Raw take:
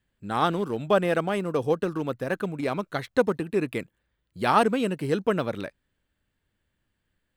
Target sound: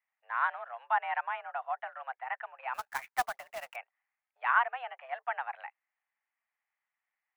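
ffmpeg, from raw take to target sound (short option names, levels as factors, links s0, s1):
-filter_complex "[0:a]highpass=f=560:t=q:w=0.5412,highpass=f=560:t=q:w=1.307,lowpass=f=2300:t=q:w=0.5176,lowpass=f=2300:t=q:w=0.7071,lowpass=f=2300:t=q:w=1.932,afreqshift=250,asettb=1/sr,asplit=3[s0][s1][s2];[s0]atrim=end=2.744[s3];[s1]atrim=start=2.74:end=3.76,asetpts=PTS-STARTPTS,afade=t=in:d=0.004:c=qsin,afade=t=out:st=1.016:d=0.004:c=qsin,acrusher=bits=2:mode=log:mix=0:aa=0.000001[s4];[s2]atrim=start=3.756[s5];[s3][s4]acrossfade=d=0.004:c1=hsin:c2=qsin[s6];[s6][s5]acrossfade=d=0.004:c1=qsin:c2=hsin,volume=0.562"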